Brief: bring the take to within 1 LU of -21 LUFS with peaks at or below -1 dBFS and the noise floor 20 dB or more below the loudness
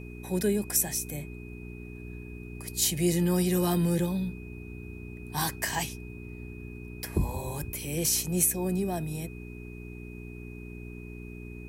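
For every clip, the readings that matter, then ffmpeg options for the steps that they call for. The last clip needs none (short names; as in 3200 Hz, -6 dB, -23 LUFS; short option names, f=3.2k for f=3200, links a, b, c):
hum 60 Hz; harmonics up to 420 Hz; hum level -39 dBFS; steady tone 2500 Hz; tone level -50 dBFS; loudness -28.5 LUFS; peak -9.5 dBFS; loudness target -21.0 LUFS
-> -af "bandreject=f=60:t=h:w=4,bandreject=f=120:t=h:w=4,bandreject=f=180:t=h:w=4,bandreject=f=240:t=h:w=4,bandreject=f=300:t=h:w=4,bandreject=f=360:t=h:w=4,bandreject=f=420:t=h:w=4"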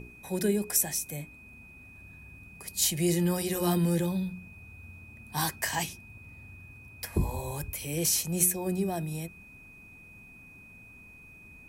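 hum none; steady tone 2500 Hz; tone level -50 dBFS
-> -af "bandreject=f=2.5k:w=30"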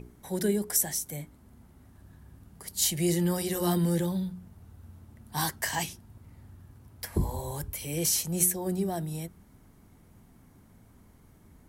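steady tone none; loudness -29.0 LUFS; peak -9.5 dBFS; loudness target -21.0 LUFS
-> -af "volume=8dB"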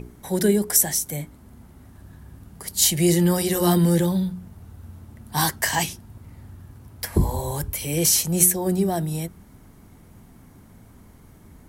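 loudness -21.0 LUFS; peak -1.5 dBFS; noise floor -50 dBFS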